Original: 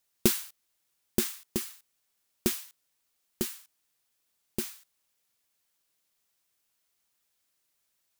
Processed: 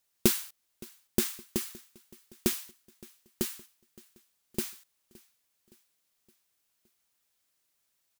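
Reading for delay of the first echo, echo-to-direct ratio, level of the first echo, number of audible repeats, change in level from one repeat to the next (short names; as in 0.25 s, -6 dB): 0.567 s, -21.5 dB, -23.0 dB, 3, -5.5 dB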